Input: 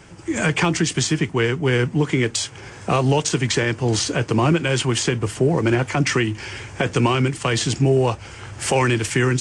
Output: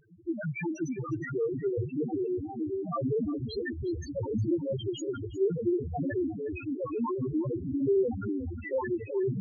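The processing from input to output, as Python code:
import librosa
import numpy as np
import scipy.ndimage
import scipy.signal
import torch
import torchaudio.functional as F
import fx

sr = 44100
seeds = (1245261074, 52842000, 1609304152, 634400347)

p1 = fx.echo_pitch(x, sr, ms=524, semitones=-4, count=3, db_per_echo=-3.0)
p2 = fx.bass_treble(p1, sr, bass_db=-7, treble_db=-1)
p3 = fx.spec_topn(p2, sr, count=1)
p4 = fx.vibrato(p3, sr, rate_hz=1.1, depth_cents=23.0)
p5 = fx.dynamic_eq(p4, sr, hz=930.0, q=4.7, threshold_db=-53.0, ratio=4.0, max_db=-3)
y = p5 + fx.echo_single(p5, sr, ms=360, db=-16.0, dry=0)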